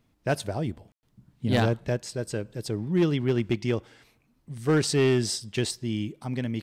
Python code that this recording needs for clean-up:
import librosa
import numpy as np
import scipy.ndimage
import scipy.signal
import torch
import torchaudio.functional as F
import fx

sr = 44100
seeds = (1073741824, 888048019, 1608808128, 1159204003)

y = fx.fix_declip(x, sr, threshold_db=-16.0)
y = fx.fix_ambience(y, sr, seeds[0], print_start_s=3.98, print_end_s=4.48, start_s=0.92, end_s=1.03)